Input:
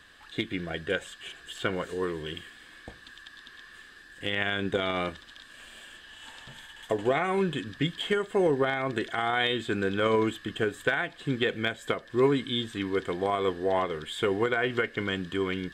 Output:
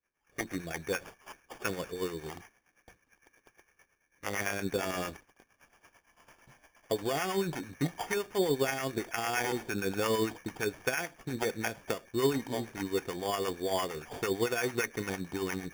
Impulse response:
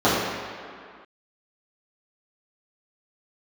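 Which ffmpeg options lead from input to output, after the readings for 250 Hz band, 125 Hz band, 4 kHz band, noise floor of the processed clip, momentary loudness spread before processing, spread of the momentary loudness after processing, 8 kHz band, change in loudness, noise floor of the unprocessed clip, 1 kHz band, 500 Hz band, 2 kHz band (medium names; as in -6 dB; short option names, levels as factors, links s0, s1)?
-4.5 dB, -4.5 dB, -7.0 dB, -75 dBFS, 21 LU, 8 LU, +9.0 dB, -4.5 dB, -52 dBFS, -5.0 dB, -5.0 dB, -5.5 dB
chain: -filter_complex "[0:a]acrossover=split=840[s0][s1];[s0]aeval=exprs='val(0)*(1-0.7/2+0.7/2*cos(2*PI*8.8*n/s))':c=same[s2];[s1]aeval=exprs='val(0)*(1-0.7/2-0.7/2*cos(2*PI*8.8*n/s))':c=same[s3];[s2][s3]amix=inputs=2:normalize=0,acrusher=samples=11:mix=1:aa=0.000001,agate=range=0.0224:threshold=0.00794:ratio=3:detection=peak,volume=0.841"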